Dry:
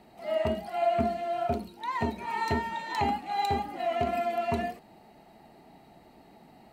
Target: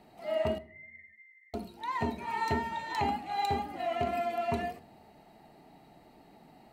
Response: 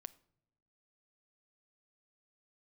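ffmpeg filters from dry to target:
-filter_complex "[0:a]asettb=1/sr,asplit=3[s0][s1][s2];[s0]atrim=end=0.584[s3];[s1]atrim=start=0.58:end=1.54,asetpts=PTS-STARTPTS,afade=t=in:d=0.004:c=qsin,afade=t=out:st=0.956:d=0.004:c=qsin,asuperpass=centerf=2000:order=20:qfactor=5.3[s4];[s2]atrim=start=1.536[s5];[s3][s4]acrossfade=d=0.004:c1=hsin:c2=qsin[s6];[s6][s5]acrossfade=d=0.004:c1=qsin:c2=hsin[s7];[1:a]atrim=start_sample=2205[s8];[s7][s8]afir=irnorm=-1:irlink=0,volume=1.5"

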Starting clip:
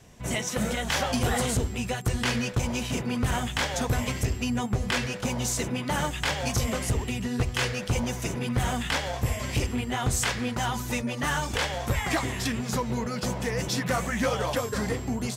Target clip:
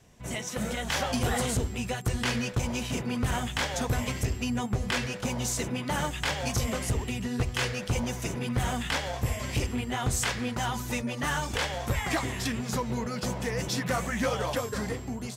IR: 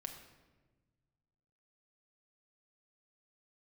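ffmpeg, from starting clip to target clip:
-af "dynaudnorm=f=200:g=7:m=1.5,volume=0.531"

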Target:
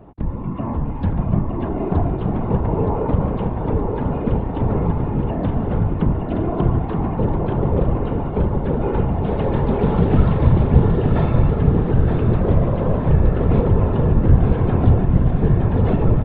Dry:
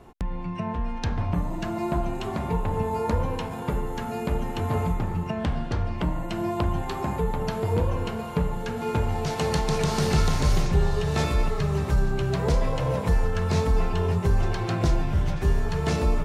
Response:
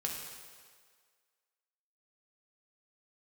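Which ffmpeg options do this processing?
-filter_complex "[0:a]aresample=8000,aresample=44100,areverse,acompressor=mode=upward:threshold=0.0141:ratio=2.5,areverse,asplit=2[s0][s1];[s1]asetrate=55563,aresample=44100,atempo=0.793701,volume=0.224[s2];[s0][s2]amix=inputs=2:normalize=0,afftfilt=real='hypot(re,im)*cos(2*PI*random(0))':imag='hypot(re,im)*sin(2*PI*random(1))':win_size=512:overlap=0.75,tiltshelf=f=1400:g=9,aecho=1:1:920|1840|2760|3680|4600|5520:0.562|0.259|0.119|0.0547|0.0252|0.0116,volume=1.58"

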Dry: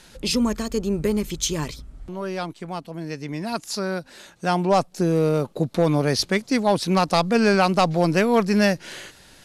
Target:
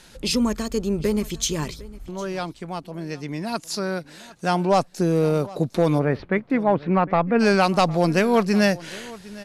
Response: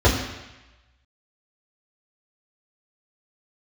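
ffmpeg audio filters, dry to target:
-filter_complex "[0:a]asplit=3[s0][s1][s2];[s0]afade=t=out:st=5.98:d=0.02[s3];[s1]lowpass=f=2200:w=0.5412,lowpass=f=2200:w=1.3066,afade=t=in:st=5.98:d=0.02,afade=t=out:st=7.39:d=0.02[s4];[s2]afade=t=in:st=7.39:d=0.02[s5];[s3][s4][s5]amix=inputs=3:normalize=0,asplit=2[s6][s7];[s7]aecho=0:1:756:0.1[s8];[s6][s8]amix=inputs=2:normalize=0"

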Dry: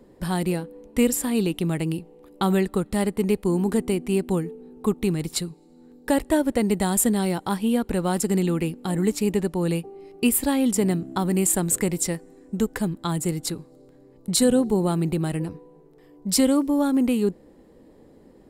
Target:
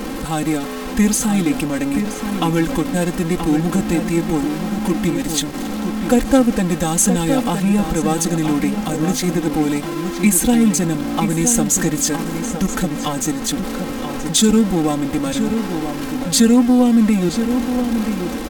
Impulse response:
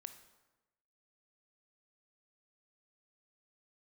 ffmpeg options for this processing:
-filter_complex "[0:a]aeval=exprs='val(0)+0.5*0.0596*sgn(val(0))':c=same,asplit=2[s0][s1];[s1]adelay=974,lowpass=f=3400:p=1,volume=0.447,asplit=2[s2][s3];[s3]adelay=974,lowpass=f=3400:p=1,volume=0.23,asplit=2[s4][s5];[s5]adelay=974,lowpass=f=3400:p=1,volume=0.23[s6];[s0][s2][s4][s6]amix=inputs=4:normalize=0,asetrate=38170,aresample=44100,atempo=1.15535,aecho=1:1:3.8:0.86,volume=1.19"

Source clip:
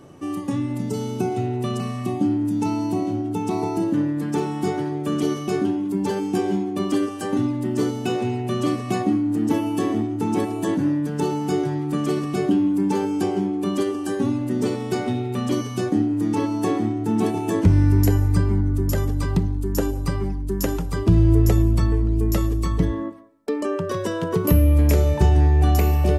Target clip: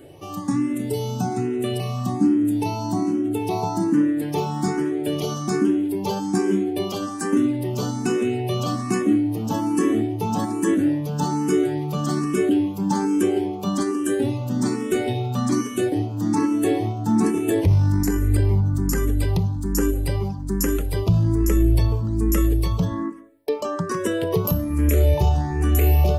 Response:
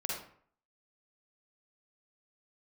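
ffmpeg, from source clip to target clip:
-filter_complex "[0:a]highshelf=f=8000:g=7.5,alimiter=limit=0.237:level=0:latency=1:release=10,asplit=2[s0][s1];[s1]afreqshift=1.2[s2];[s0][s2]amix=inputs=2:normalize=1,volume=1.58"

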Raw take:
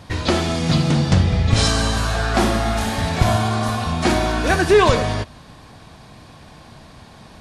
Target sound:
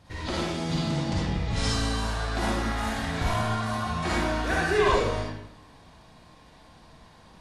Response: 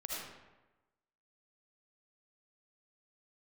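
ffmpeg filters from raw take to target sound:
-filter_complex "[0:a]asettb=1/sr,asplit=3[s0][s1][s2];[s0]atrim=end=2.584[s3];[s1]atrim=start=2.58:end=4.88,asetpts=PTS-STARTPTS,afade=t=in:d=0.004:c=qsin,afade=t=out:st=2.296:d=0.004:c=qsin,equalizer=f=1600:w=1.2:g=4.5[s4];[s2]atrim=start=4.876[s5];[s3][s4]acrossfade=d=0.004:c1=hsin:c2=qsin[s6];[s6][s5]acrossfade=d=0.004:c1=qsin:c2=hsin[s7];[1:a]atrim=start_sample=2205,asetrate=66150,aresample=44100[s8];[s7][s8]afir=irnorm=-1:irlink=0,volume=0.473"

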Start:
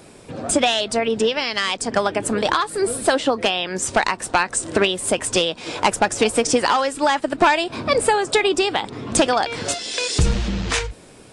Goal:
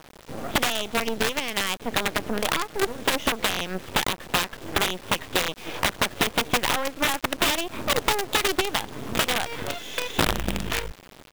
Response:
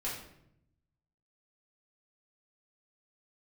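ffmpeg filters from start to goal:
-af "aresample=8000,aeval=exprs='(mod(3.35*val(0)+1,2)-1)/3.35':c=same,aresample=44100,acompressor=threshold=0.0794:ratio=2.5,acrusher=bits=4:dc=4:mix=0:aa=0.000001"

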